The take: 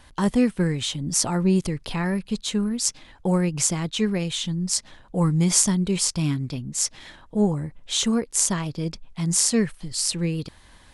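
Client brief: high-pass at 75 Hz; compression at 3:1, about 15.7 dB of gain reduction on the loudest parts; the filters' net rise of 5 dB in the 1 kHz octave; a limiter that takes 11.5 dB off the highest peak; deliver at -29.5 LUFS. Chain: high-pass 75 Hz; peaking EQ 1 kHz +6 dB; compression 3:1, threshold -38 dBFS; trim +8.5 dB; peak limiter -19 dBFS

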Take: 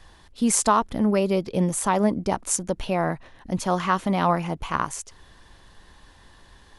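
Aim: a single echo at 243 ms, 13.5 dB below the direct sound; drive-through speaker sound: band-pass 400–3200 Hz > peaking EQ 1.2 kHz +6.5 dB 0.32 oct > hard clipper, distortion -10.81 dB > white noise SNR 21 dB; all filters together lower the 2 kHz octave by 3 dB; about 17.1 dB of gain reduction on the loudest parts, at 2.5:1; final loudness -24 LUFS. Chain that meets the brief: peaking EQ 2 kHz -5 dB; compression 2.5:1, threshold -44 dBFS; band-pass 400–3200 Hz; peaking EQ 1.2 kHz +6.5 dB 0.32 oct; delay 243 ms -13.5 dB; hard clipper -34 dBFS; white noise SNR 21 dB; trim +20.5 dB

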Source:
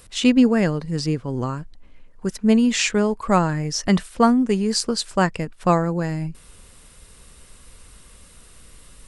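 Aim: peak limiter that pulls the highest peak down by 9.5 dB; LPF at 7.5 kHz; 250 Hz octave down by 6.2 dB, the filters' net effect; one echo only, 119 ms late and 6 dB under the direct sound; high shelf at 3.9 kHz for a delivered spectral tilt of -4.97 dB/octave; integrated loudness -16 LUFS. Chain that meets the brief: low-pass 7.5 kHz; peaking EQ 250 Hz -7.5 dB; treble shelf 3.9 kHz -7.5 dB; peak limiter -15.5 dBFS; delay 119 ms -6 dB; trim +10 dB

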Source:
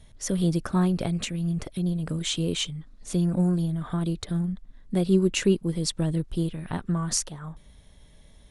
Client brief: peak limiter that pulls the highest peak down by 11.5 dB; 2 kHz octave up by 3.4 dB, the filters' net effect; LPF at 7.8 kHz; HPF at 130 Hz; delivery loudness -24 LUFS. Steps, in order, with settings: high-pass 130 Hz; low-pass 7.8 kHz; peaking EQ 2 kHz +4.5 dB; trim +7 dB; peak limiter -15.5 dBFS

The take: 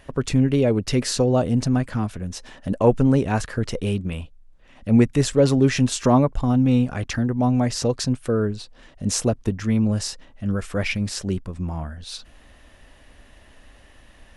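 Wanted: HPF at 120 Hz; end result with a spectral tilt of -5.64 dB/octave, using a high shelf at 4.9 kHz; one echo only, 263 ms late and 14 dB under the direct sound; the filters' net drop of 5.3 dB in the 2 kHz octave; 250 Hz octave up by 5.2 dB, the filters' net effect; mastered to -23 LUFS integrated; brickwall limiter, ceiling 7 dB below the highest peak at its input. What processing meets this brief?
high-pass 120 Hz; peaking EQ 250 Hz +6 dB; peaking EQ 2 kHz -8.5 dB; treble shelf 4.9 kHz +8 dB; peak limiter -7.5 dBFS; delay 263 ms -14 dB; trim -4 dB

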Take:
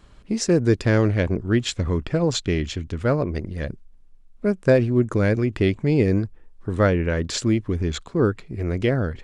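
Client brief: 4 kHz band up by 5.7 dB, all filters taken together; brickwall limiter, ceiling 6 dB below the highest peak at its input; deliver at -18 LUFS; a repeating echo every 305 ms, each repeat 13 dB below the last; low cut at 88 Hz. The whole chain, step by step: high-pass 88 Hz; peaking EQ 4 kHz +7 dB; peak limiter -10 dBFS; feedback delay 305 ms, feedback 22%, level -13 dB; trim +5.5 dB

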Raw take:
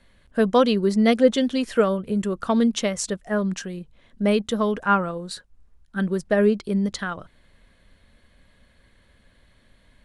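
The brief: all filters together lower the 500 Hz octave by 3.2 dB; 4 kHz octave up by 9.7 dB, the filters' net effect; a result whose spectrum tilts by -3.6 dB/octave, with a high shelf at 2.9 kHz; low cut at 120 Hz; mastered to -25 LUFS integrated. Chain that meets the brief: high-pass 120 Hz; peaking EQ 500 Hz -4 dB; treble shelf 2.9 kHz +5 dB; peaking EQ 4 kHz +8.5 dB; trim -2.5 dB

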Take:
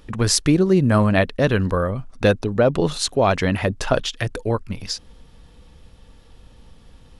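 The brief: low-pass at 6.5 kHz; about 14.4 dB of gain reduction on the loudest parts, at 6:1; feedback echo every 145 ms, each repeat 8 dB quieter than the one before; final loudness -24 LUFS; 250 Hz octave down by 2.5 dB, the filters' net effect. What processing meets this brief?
low-pass 6.5 kHz; peaking EQ 250 Hz -3.5 dB; compression 6:1, threshold -29 dBFS; feedback delay 145 ms, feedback 40%, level -8 dB; trim +8.5 dB

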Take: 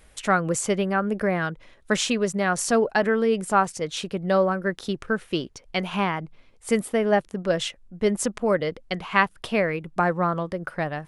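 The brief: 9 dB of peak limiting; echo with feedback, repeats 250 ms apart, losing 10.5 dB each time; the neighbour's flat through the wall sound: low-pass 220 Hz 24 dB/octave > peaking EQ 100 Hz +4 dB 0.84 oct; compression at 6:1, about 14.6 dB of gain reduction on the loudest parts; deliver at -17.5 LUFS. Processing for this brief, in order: compression 6:1, threshold -32 dBFS; peak limiter -26 dBFS; low-pass 220 Hz 24 dB/octave; peaking EQ 100 Hz +4 dB 0.84 oct; feedback delay 250 ms, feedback 30%, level -10.5 dB; trim +26 dB

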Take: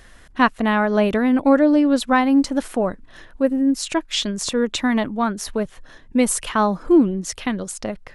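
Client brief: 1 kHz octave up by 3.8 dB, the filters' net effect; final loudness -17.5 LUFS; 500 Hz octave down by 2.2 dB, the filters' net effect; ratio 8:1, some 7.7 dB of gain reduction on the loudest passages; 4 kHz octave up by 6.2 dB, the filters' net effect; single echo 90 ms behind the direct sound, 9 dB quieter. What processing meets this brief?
peaking EQ 500 Hz -4.5 dB; peaking EQ 1 kHz +5.5 dB; peaking EQ 4 kHz +7.5 dB; compression 8:1, threshold -17 dBFS; delay 90 ms -9 dB; trim +5 dB

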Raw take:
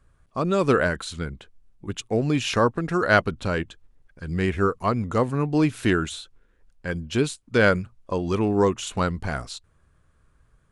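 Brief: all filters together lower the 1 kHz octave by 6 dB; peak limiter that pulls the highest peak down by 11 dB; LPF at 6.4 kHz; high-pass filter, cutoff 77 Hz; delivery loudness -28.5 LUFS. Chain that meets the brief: high-pass 77 Hz; low-pass 6.4 kHz; peaking EQ 1 kHz -8.5 dB; peak limiter -16.5 dBFS

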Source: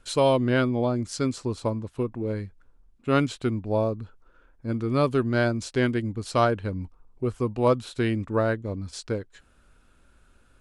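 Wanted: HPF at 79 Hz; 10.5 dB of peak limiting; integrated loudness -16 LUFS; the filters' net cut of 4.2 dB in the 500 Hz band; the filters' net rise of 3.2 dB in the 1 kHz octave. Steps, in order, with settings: high-pass 79 Hz; peaking EQ 500 Hz -7 dB; peaking EQ 1 kHz +6 dB; trim +14.5 dB; peak limiter -3 dBFS

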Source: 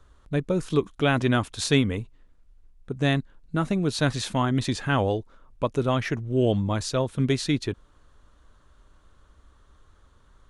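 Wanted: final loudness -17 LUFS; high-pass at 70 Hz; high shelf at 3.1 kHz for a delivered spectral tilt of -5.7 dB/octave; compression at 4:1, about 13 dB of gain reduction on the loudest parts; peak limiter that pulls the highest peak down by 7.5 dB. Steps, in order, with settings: high-pass 70 Hz; treble shelf 3.1 kHz -7.5 dB; compression 4:1, threshold -33 dBFS; trim +22 dB; peak limiter -6 dBFS

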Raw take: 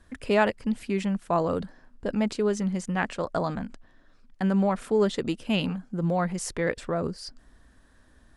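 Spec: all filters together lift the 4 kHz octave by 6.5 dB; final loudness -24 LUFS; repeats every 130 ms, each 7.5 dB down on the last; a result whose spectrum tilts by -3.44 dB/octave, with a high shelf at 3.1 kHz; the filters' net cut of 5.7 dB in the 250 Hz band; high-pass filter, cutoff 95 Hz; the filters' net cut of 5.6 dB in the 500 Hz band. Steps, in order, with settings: high-pass 95 Hz; peaking EQ 250 Hz -7 dB; peaking EQ 500 Hz -5.5 dB; treble shelf 3.1 kHz +8 dB; peaking EQ 4 kHz +3 dB; feedback delay 130 ms, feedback 42%, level -7.5 dB; trim +5.5 dB

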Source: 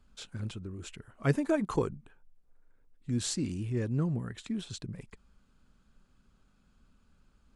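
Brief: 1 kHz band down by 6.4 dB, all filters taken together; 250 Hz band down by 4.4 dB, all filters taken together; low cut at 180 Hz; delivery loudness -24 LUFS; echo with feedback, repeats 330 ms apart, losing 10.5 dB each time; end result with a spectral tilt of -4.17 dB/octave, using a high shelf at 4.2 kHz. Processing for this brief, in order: high-pass 180 Hz; peaking EQ 250 Hz -3.5 dB; peaking EQ 1 kHz -8.5 dB; treble shelf 4.2 kHz +4.5 dB; feedback delay 330 ms, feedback 30%, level -10.5 dB; trim +13 dB

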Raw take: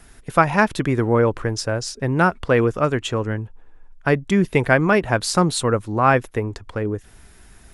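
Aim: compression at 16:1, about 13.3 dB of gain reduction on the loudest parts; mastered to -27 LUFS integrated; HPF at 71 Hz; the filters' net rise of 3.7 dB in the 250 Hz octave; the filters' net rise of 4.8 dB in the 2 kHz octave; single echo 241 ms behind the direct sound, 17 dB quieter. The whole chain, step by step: high-pass 71 Hz; peaking EQ 250 Hz +5 dB; peaking EQ 2 kHz +6.5 dB; compression 16:1, threshold -21 dBFS; delay 241 ms -17 dB

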